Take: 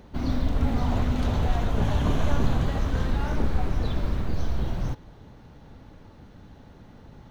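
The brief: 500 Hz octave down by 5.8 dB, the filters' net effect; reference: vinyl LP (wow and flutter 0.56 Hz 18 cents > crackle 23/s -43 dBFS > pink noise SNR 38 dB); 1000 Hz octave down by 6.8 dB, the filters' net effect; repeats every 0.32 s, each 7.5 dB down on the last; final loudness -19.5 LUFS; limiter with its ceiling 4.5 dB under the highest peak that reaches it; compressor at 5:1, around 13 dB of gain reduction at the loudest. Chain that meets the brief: bell 500 Hz -5.5 dB; bell 1000 Hz -7 dB; compressor 5:1, threshold -31 dBFS; limiter -27.5 dBFS; feedback echo 0.32 s, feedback 42%, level -7.5 dB; wow and flutter 0.56 Hz 18 cents; crackle 23/s -43 dBFS; pink noise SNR 38 dB; gain +20.5 dB

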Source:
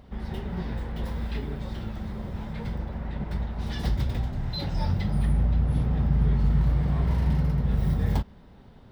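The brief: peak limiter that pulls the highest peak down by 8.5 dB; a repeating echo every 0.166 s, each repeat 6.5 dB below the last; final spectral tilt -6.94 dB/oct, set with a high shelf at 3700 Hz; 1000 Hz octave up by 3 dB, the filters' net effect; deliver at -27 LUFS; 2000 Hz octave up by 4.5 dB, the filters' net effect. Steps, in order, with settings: bell 1000 Hz +3 dB; bell 2000 Hz +6.5 dB; high shelf 3700 Hz -8.5 dB; limiter -20 dBFS; feedback echo 0.166 s, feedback 47%, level -6.5 dB; gain +2.5 dB

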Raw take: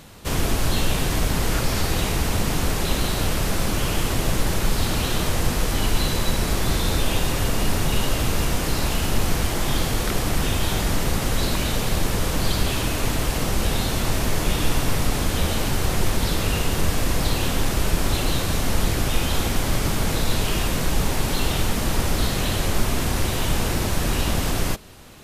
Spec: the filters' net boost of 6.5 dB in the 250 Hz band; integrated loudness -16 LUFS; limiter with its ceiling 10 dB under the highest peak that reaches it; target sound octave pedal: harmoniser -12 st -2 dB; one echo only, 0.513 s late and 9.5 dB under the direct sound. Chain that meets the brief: bell 250 Hz +8.5 dB; limiter -15.5 dBFS; echo 0.513 s -9.5 dB; harmoniser -12 st -2 dB; gain +8 dB

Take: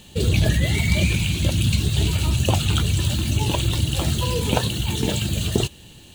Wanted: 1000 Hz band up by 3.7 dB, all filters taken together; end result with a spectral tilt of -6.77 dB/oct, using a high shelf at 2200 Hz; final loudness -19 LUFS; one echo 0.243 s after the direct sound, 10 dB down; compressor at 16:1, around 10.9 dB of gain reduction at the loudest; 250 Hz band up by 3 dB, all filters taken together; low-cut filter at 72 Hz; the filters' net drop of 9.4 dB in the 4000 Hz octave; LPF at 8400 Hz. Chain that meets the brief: HPF 72 Hz; LPF 8400 Hz; bell 250 Hz +4.5 dB; bell 1000 Hz +6 dB; high shelf 2200 Hz -8.5 dB; bell 4000 Hz -5 dB; compressor 16:1, threshold -24 dBFS; echo 0.243 s -10 dB; gain +10 dB

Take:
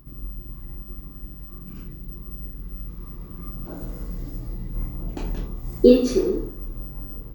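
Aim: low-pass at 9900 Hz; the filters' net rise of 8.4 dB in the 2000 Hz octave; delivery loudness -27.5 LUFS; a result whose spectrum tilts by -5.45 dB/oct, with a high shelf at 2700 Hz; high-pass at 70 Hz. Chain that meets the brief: HPF 70 Hz; LPF 9900 Hz; bell 2000 Hz +7 dB; high shelf 2700 Hz +8.5 dB; gain -7 dB

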